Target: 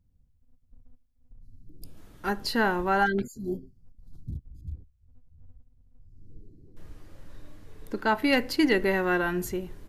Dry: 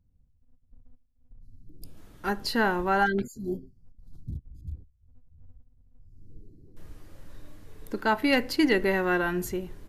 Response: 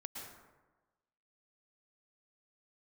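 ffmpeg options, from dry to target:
-filter_complex "[0:a]asettb=1/sr,asplit=3[link_01][link_02][link_03];[link_01]atrim=end=4.674[link_04];[link_02]atrim=start=4.67:end=8.15,asetpts=PTS-STARTPTS,afade=type=in:duration=0.004:curve=qsin,afade=type=out:start_time=3.476:duration=0.004:curve=qsin,highshelf=frequency=9600:gain=-6.5[link_05];[link_03]atrim=start=8.146[link_06];[link_04][link_05]acrossfade=duration=0.004:curve1=hsin:curve2=qsin[link_07];[link_07][link_06]acrossfade=duration=0.004:curve1=qsin:curve2=hsin"

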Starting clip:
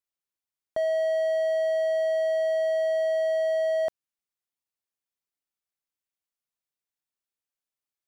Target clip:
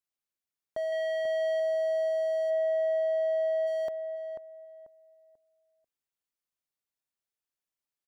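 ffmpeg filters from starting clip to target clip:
ffmpeg -i in.wav -filter_complex "[0:a]asplit=3[link_01][link_02][link_03];[link_01]afade=type=out:start_time=2.49:duration=0.02[link_04];[link_02]bass=frequency=250:gain=8,treble=frequency=4000:gain=-12,afade=type=in:start_time=2.49:duration=0.02,afade=type=out:start_time=3.66:duration=0.02[link_05];[link_03]afade=type=in:start_time=3.66:duration=0.02[link_06];[link_04][link_05][link_06]amix=inputs=3:normalize=0,alimiter=limit=-24dB:level=0:latency=1,asettb=1/sr,asplit=3[link_07][link_08][link_09];[link_07]atrim=end=0.924[link_10];[link_08]atrim=start=0.92:end=1.6,asetpts=PTS-STARTPTS,afade=type=in:duration=0.004:curve=qsin,afade=type=out:start_time=0.676:duration=0.004:curve=qsin,equalizer=frequency=2600:width_type=o:width=0.98:gain=11.5[link_11];[link_09]atrim=start=1.596[link_12];[link_10][link_11]acrossfade=duration=0.004:curve1=hsin:curve2=qsin[link_13];[link_13][link_12]acrossfade=duration=0.004:curve1=qsin:curve2=hsin,asplit=2[link_14][link_15];[link_15]adelay=490,lowpass=frequency=1200:poles=1,volume=-5.5dB,asplit=2[link_16][link_17];[link_17]adelay=490,lowpass=frequency=1200:poles=1,volume=0.29,asplit=2[link_18][link_19];[link_19]adelay=490,lowpass=frequency=1200:poles=1,volume=0.29,asplit=2[link_20][link_21];[link_21]adelay=490,lowpass=frequency=1200:poles=1,volume=0.29[link_22];[link_14][link_16][link_18][link_20][link_22]amix=inputs=5:normalize=0,volume=-2dB" out.wav

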